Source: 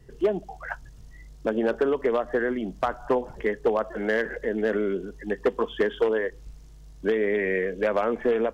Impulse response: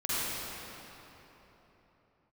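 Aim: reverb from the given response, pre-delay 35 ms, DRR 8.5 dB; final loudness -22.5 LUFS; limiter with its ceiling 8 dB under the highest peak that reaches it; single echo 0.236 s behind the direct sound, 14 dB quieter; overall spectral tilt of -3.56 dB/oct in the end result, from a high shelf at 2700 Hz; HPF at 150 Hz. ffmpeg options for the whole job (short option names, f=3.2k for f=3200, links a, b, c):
-filter_complex "[0:a]highpass=150,highshelf=f=2.7k:g=5,alimiter=limit=-18dB:level=0:latency=1,aecho=1:1:236:0.2,asplit=2[a][b];[1:a]atrim=start_sample=2205,adelay=35[c];[b][c]afir=irnorm=-1:irlink=0,volume=-18.5dB[d];[a][d]amix=inputs=2:normalize=0,volume=6dB"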